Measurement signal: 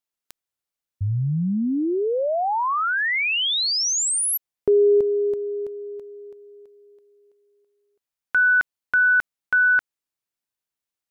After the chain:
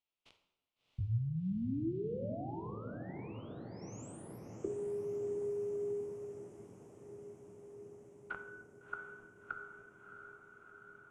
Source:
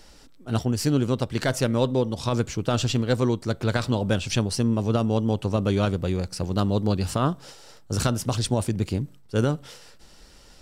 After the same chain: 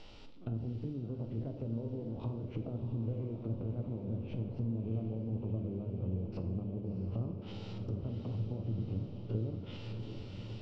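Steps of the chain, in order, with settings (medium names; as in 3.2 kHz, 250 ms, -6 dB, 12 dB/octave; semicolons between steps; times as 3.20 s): spectrogram pixelated in time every 50 ms; peaking EQ 1.7 kHz -13 dB 0.57 oct; compression 20:1, threshold -34 dBFS; resonant low-pass 2.9 kHz, resonance Q 1.9; low-pass that closes with the level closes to 410 Hz, closed at -34.5 dBFS; echo that smears into a reverb 683 ms, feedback 76%, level -8.5 dB; plate-style reverb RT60 0.95 s, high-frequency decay 0.8×, DRR 6.5 dB; trim -1 dB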